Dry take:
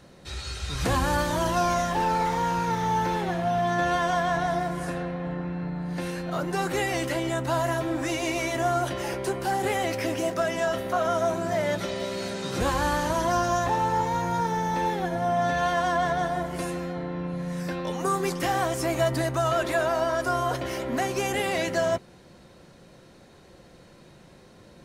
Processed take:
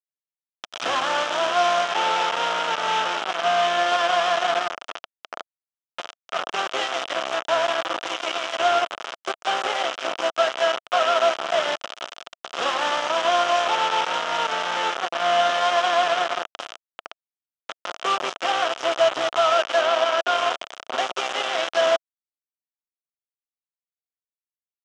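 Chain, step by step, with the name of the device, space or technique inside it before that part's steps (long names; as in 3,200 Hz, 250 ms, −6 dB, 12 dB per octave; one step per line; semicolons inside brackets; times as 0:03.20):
hand-held game console (bit reduction 4 bits; loudspeaker in its box 490–5,800 Hz, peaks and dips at 670 Hz +7 dB, 1,300 Hz +7 dB, 2,000 Hz −3 dB, 3,100 Hz +7 dB, 4,400 Hz −7 dB)
0:19.81–0:20.32: high-shelf EQ 10,000 Hz −9.5 dB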